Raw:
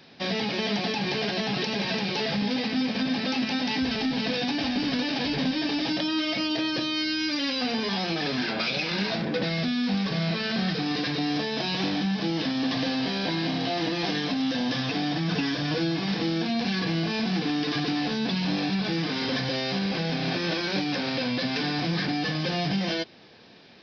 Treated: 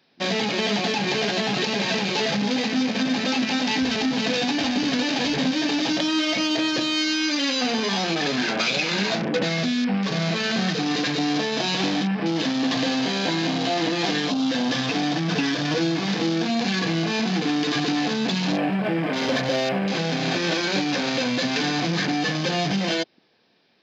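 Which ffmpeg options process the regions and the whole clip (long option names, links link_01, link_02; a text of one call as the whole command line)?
ffmpeg -i in.wav -filter_complex "[0:a]asettb=1/sr,asplit=3[link_01][link_02][link_03];[link_01]atrim=end=18.524[link_04];[link_02]atrim=start=18.52:end=19.88,asetpts=PTS-STARTPTS,afade=type=in:duration=0.004:curve=qsin,afade=type=out:start_time=1.356:duration=0.004:curve=qsin,adynamicsmooth=sensitivity=5:basefreq=2700,equalizer=frequency=610:width_type=o:width=0.31:gain=10[link_05];[link_03]atrim=start=19.876[link_06];[link_04][link_05]acrossfade=duration=0.004:curve1=hsin:curve2=qsin[link_07];[link_07][link_06]acrossfade=duration=0.004:curve1=qsin:curve2=hsin,afwtdn=0.0178,lowshelf=frequency=110:gain=-11.5,acontrast=36" out.wav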